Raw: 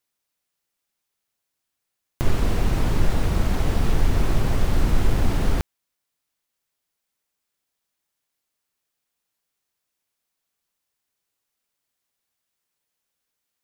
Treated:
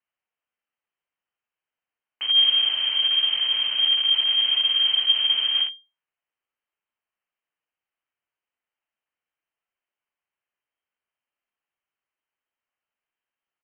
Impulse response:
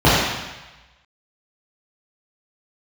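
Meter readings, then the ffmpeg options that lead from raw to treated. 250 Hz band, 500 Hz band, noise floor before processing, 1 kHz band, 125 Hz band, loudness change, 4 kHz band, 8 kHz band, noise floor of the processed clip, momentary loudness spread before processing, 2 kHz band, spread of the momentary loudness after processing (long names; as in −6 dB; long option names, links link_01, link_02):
below −30 dB, below −20 dB, −81 dBFS, −11.0 dB, below −40 dB, +6.5 dB, +24.0 dB, below −35 dB, below −85 dBFS, 4 LU, +1.0 dB, 4 LU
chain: -filter_complex "[0:a]acrossover=split=210|530|1300[link_01][link_02][link_03][link_04];[link_02]alimiter=level_in=8.5dB:limit=-24dB:level=0:latency=1,volume=-8.5dB[link_05];[link_01][link_05][link_03][link_04]amix=inputs=4:normalize=0,flanger=delay=2.7:depth=7.9:regen=79:speed=0.49:shape=triangular,volume=18.5dB,asoftclip=hard,volume=-18.5dB,aecho=1:1:59|77:0.531|0.2,lowpass=frequency=2700:width_type=q:width=0.5098,lowpass=frequency=2700:width_type=q:width=0.6013,lowpass=frequency=2700:width_type=q:width=0.9,lowpass=frequency=2700:width_type=q:width=2.563,afreqshift=-3200"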